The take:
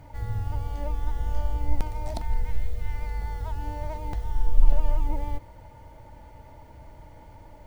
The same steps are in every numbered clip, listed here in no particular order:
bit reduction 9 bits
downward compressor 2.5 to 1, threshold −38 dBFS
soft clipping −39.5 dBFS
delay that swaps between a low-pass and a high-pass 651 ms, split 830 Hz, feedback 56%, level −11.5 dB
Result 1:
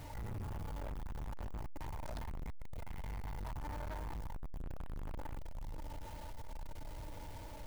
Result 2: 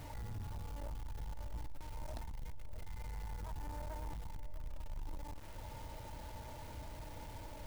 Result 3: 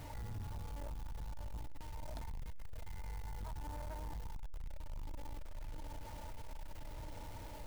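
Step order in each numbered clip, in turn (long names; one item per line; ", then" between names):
bit reduction, then delay that swaps between a low-pass and a high-pass, then soft clipping, then downward compressor
downward compressor, then bit reduction, then soft clipping, then delay that swaps between a low-pass and a high-pass
delay that swaps between a low-pass and a high-pass, then downward compressor, then bit reduction, then soft clipping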